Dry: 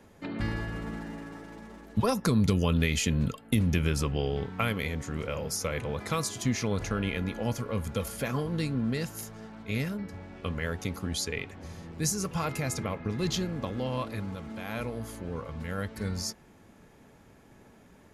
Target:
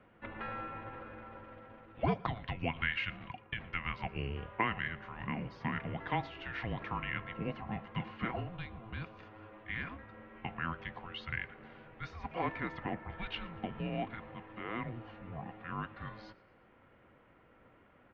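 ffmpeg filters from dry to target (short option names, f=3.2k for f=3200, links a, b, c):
-filter_complex "[0:a]highpass=f=480:t=q:w=0.5412,highpass=f=480:t=q:w=1.307,lowpass=f=3.2k:t=q:w=0.5176,lowpass=f=3.2k:t=q:w=0.7071,lowpass=f=3.2k:t=q:w=1.932,afreqshift=-340,asettb=1/sr,asplit=3[a][b][c];[a]atrim=end=8.494[d];[b]atrim=start=8.49:end=9.2,asetpts=PTS-STARTPTS,afade=t=in:d=0.004:c=qsin,afade=t=out:st=0.706:d=0.004:c=qsin,equalizer=f=1.8k:w=1.5:g=-6.5[e];[c]atrim=start=9.196[f];[d][e]acrossfade=d=0.004:c1=hsin:c2=qsin[g];[g][f]acrossfade=d=0.004:c1=qsin:c2=hsin,aecho=1:1:117|234|351:0.0708|0.0326|0.015,volume=-1dB"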